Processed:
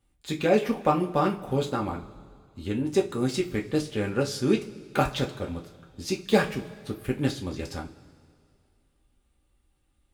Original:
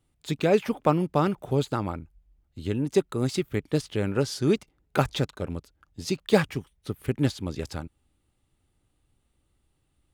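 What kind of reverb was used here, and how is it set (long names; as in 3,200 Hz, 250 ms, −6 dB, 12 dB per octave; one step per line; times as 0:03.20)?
coupled-rooms reverb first 0.23 s, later 2.2 s, from −22 dB, DRR −1 dB
level −2.5 dB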